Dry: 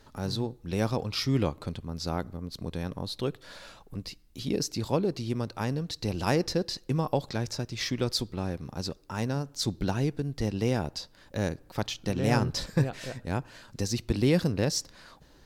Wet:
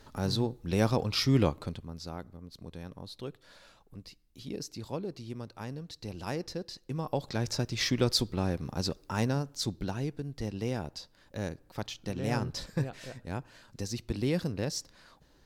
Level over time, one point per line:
0:01.48 +1.5 dB
0:02.12 −9.5 dB
0:06.81 −9.5 dB
0:07.56 +2 dB
0:09.20 +2 dB
0:09.89 −6 dB

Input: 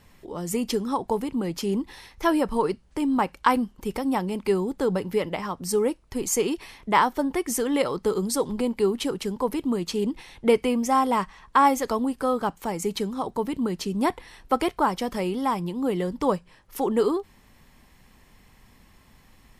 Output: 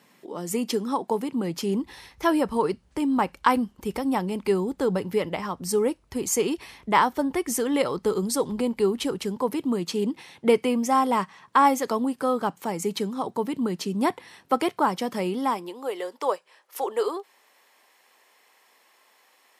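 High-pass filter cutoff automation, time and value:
high-pass filter 24 dB per octave
0:01.18 180 Hz
0:01.89 48 Hz
0:09.14 48 Hz
0:09.69 120 Hz
0:15.21 120 Hz
0:15.84 440 Hz

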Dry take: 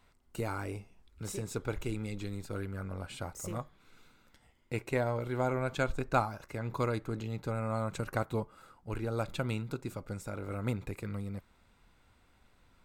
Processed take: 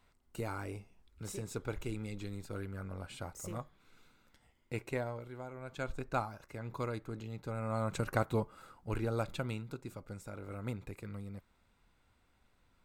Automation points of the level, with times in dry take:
0:04.87 −3.5 dB
0:05.51 −16 dB
0:05.90 −6 dB
0:07.43 −6 dB
0:07.95 +1 dB
0:09.00 +1 dB
0:09.64 −6 dB

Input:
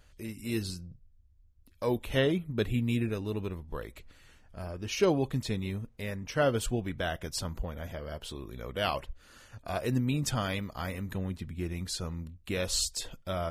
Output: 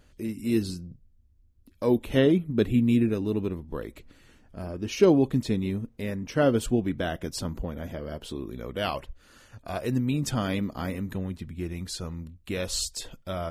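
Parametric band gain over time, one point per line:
parametric band 270 Hz 1.6 octaves
0:08.49 +10 dB
0:08.98 +3.5 dB
0:10.07 +3.5 dB
0:10.72 +13.5 dB
0:11.29 +3 dB

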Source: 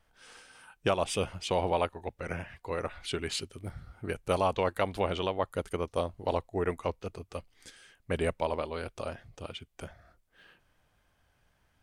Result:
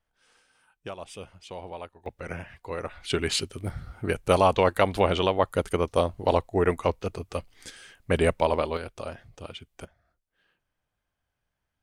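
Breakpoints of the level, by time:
−10.5 dB
from 0:02.06 +0.5 dB
from 0:03.10 +7.5 dB
from 0:08.77 +1 dB
from 0:09.85 −12 dB

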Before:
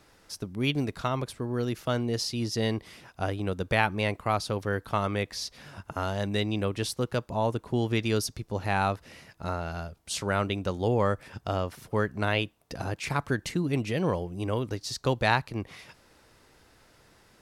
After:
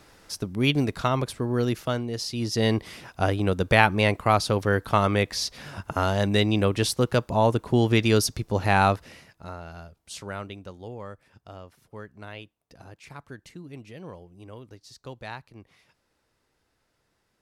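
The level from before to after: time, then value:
0:01.72 +5 dB
0:02.10 −2.5 dB
0:02.75 +6.5 dB
0:08.93 +6.5 dB
0:09.46 −6.5 dB
0:10.23 −6.5 dB
0:10.97 −14 dB

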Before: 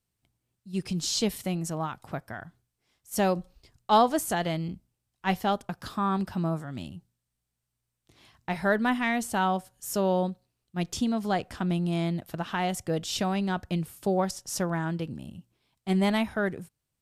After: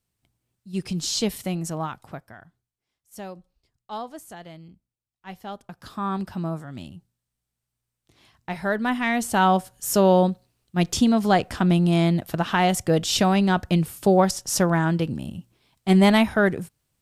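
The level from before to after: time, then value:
0:01.91 +2.5 dB
0:02.32 −6 dB
0:03.34 −13 dB
0:05.27 −13 dB
0:06.07 0 dB
0:08.74 0 dB
0:09.56 +8.5 dB

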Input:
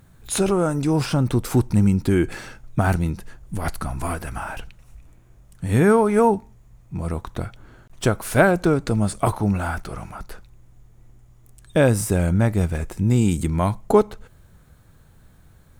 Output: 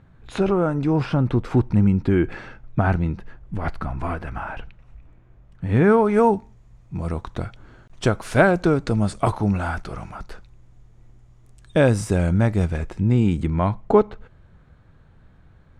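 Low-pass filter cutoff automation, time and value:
0:05.73 2,600 Hz
0:06.28 6,200 Hz
0:12.65 6,200 Hz
0:13.17 2,900 Hz

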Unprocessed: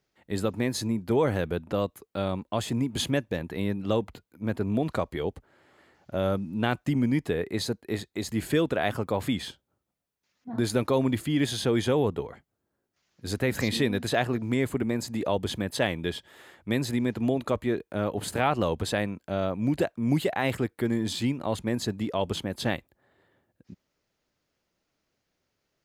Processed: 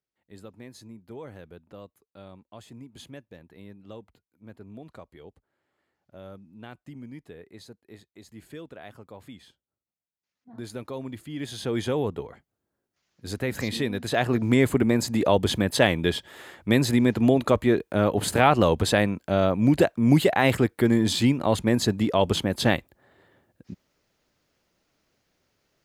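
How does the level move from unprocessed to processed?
0:09.48 −17 dB
0:10.68 −11 dB
0:11.26 −11 dB
0:11.78 −2 dB
0:14.02 −2 dB
0:14.42 +6.5 dB

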